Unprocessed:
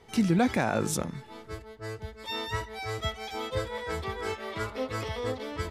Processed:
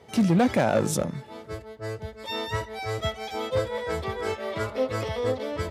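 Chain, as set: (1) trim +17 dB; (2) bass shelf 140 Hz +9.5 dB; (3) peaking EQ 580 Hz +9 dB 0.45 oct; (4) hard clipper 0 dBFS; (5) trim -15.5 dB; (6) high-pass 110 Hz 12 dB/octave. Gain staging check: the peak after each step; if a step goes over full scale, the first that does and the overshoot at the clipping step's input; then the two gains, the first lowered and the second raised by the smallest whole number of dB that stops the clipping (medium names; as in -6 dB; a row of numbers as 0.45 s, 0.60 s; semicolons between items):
+2.5 dBFS, +5.5 dBFS, +6.5 dBFS, 0.0 dBFS, -15.5 dBFS, -11.0 dBFS; step 1, 6.5 dB; step 1 +10 dB, step 5 -8.5 dB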